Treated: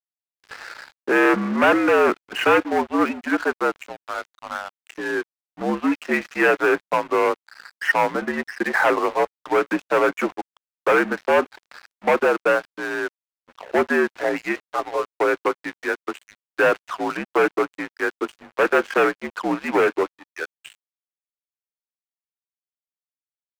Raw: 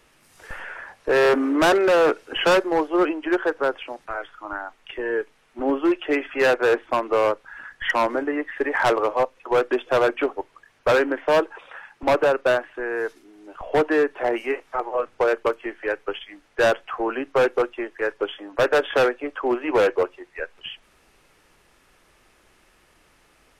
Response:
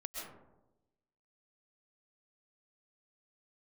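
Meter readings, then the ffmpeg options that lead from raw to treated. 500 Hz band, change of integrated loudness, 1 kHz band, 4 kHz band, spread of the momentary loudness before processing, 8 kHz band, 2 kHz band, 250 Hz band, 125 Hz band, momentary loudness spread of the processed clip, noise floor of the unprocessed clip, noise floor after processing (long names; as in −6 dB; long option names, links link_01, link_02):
−1.0 dB, +1.0 dB, +2.0 dB, −3.0 dB, 15 LU, can't be measured, +3.5 dB, +2.0 dB, +0.5 dB, 14 LU, −60 dBFS, below −85 dBFS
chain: -af "highpass=frequency=190:width_type=q:width=0.5412,highpass=frequency=190:width_type=q:width=1.307,lowpass=frequency=2700:width_type=q:width=0.5176,lowpass=frequency=2700:width_type=q:width=0.7071,lowpass=frequency=2700:width_type=q:width=1.932,afreqshift=-66,aeval=exprs='sgn(val(0))*max(abs(val(0))-0.0119,0)':channel_layout=same,tiltshelf=frequency=800:gain=-4,volume=2.5dB"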